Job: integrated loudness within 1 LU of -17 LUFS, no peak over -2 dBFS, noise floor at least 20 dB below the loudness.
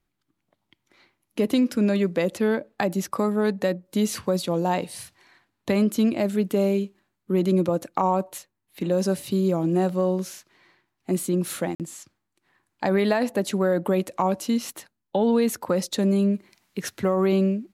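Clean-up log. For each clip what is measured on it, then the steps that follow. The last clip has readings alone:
dropouts 1; longest dropout 48 ms; loudness -24.0 LUFS; peak level -7.0 dBFS; loudness target -17.0 LUFS
-> interpolate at 11.75 s, 48 ms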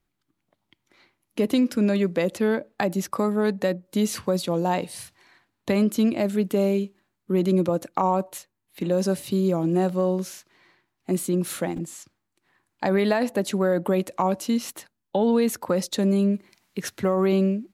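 dropouts 0; loudness -24.0 LUFS; peak level -7.0 dBFS; loudness target -17.0 LUFS
-> trim +7 dB; peak limiter -2 dBFS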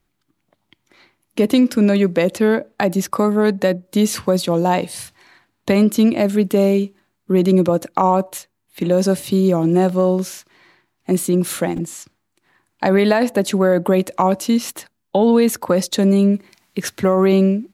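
loudness -17.5 LUFS; peak level -2.0 dBFS; noise floor -72 dBFS

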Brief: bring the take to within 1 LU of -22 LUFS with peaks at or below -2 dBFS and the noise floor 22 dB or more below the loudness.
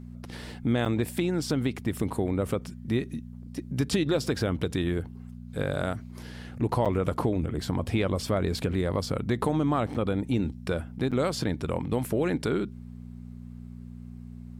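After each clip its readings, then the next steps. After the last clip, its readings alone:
dropouts 4; longest dropout 6.9 ms; hum 60 Hz; highest harmonic 240 Hz; hum level -39 dBFS; loudness -29.0 LUFS; peak level -13.0 dBFS; loudness target -22.0 LUFS
-> interpolate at 0.85/6.85/9.94/11.11 s, 6.9 ms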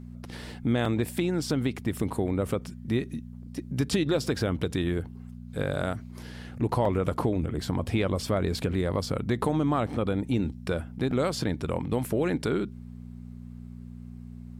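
dropouts 0; hum 60 Hz; highest harmonic 240 Hz; hum level -39 dBFS
-> de-hum 60 Hz, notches 4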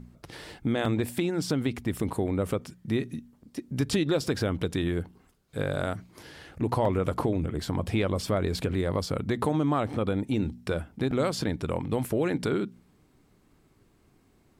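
hum not found; loudness -29.0 LUFS; peak level -13.0 dBFS; loudness target -22.0 LUFS
-> trim +7 dB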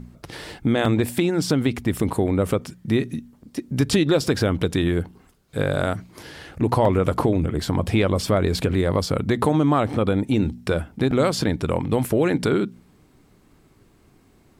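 loudness -22.0 LUFS; peak level -6.0 dBFS; noise floor -56 dBFS

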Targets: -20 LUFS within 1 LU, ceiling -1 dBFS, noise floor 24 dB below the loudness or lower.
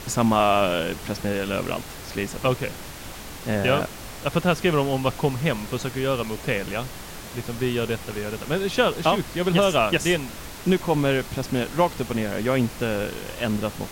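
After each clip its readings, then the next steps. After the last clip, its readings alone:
dropouts 2; longest dropout 1.7 ms; noise floor -38 dBFS; noise floor target -49 dBFS; loudness -24.5 LUFS; peak level -6.5 dBFS; loudness target -20.0 LUFS
-> interpolate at 3.55/5.52 s, 1.7 ms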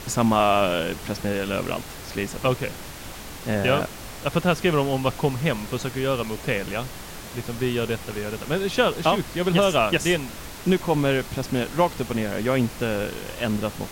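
dropouts 0; noise floor -38 dBFS; noise floor target -49 dBFS
-> noise print and reduce 11 dB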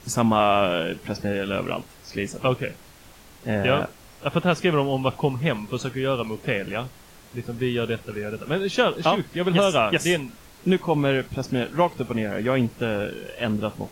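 noise floor -49 dBFS; loudness -24.5 LUFS; peak level -6.5 dBFS; loudness target -20.0 LUFS
-> trim +4.5 dB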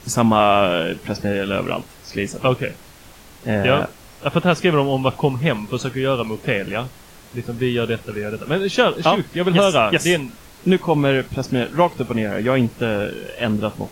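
loudness -20.0 LUFS; peak level -2.0 dBFS; noise floor -44 dBFS

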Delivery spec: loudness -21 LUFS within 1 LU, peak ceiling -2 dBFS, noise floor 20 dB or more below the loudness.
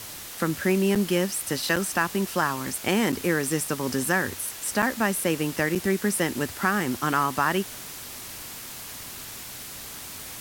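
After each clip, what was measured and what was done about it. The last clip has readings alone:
dropouts 5; longest dropout 6.5 ms; noise floor -39 dBFS; noise floor target -47 dBFS; loudness -26.5 LUFS; peak level -8.5 dBFS; loudness target -21.0 LUFS
-> interpolate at 0.95/1.76/3.12/4.82/5.75 s, 6.5 ms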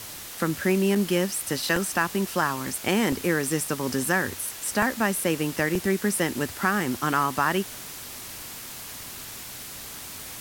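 dropouts 0; noise floor -39 dBFS; noise floor target -47 dBFS
-> noise reduction 8 dB, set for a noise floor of -39 dBFS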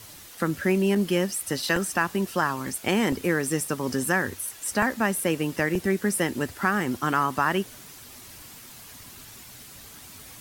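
noise floor -46 dBFS; loudness -25.5 LUFS; peak level -8.5 dBFS; loudness target -21.0 LUFS
-> trim +4.5 dB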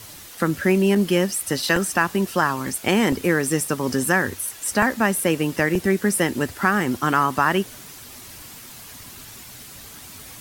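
loudness -21.0 LUFS; peak level -4.0 dBFS; noise floor -41 dBFS

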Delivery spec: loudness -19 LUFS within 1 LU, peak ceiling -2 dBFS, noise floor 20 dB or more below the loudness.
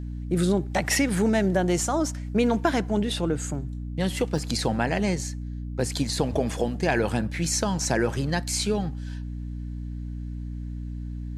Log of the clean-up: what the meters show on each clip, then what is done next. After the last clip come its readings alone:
dropouts 2; longest dropout 1.2 ms; hum 60 Hz; highest harmonic 300 Hz; hum level -31 dBFS; loudness -26.5 LUFS; peak level -8.0 dBFS; loudness target -19.0 LUFS
-> interpolate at 0.95/4.38 s, 1.2 ms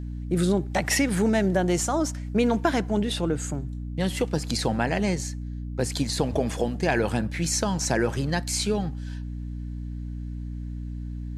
dropouts 0; hum 60 Hz; highest harmonic 300 Hz; hum level -31 dBFS
-> de-hum 60 Hz, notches 5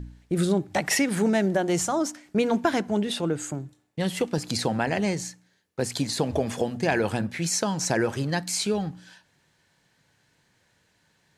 hum not found; loudness -26.0 LUFS; peak level -8.0 dBFS; loudness target -19.0 LUFS
-> trim +7 dB; peak limiter -2 dBFS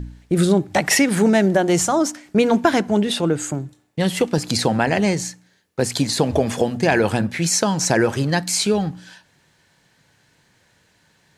loudness -19.0 LUFS; peak level -2.0 dBFS; noise floor -61 dBFS

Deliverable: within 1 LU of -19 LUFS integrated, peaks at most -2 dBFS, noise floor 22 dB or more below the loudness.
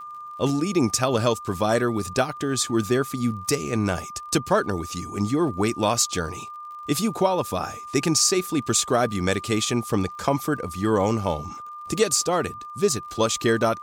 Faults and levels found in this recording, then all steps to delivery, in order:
tick rate 48 per s; steady tone 1.2 kHz; tone level -35 dBFS; loudness -23.5 LUFS; peak level -7.0 dBFS; loudness target -19.0 LUFS
-> de-click; band-stop 1.2 kHz, Q 30; trim +4.5 dB

